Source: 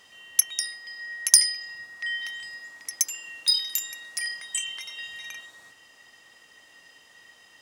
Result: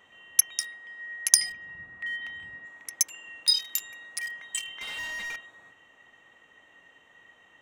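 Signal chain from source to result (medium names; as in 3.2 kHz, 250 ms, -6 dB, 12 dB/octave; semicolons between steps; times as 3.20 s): local Wiener filter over 9 samples; 1.34–2.66 s: tone controls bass +13 dB, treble -9 dB; 4.81–5.36 s: overdrive pedal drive 27 dB, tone 4.1 kHz, clips at -28.5 dBFS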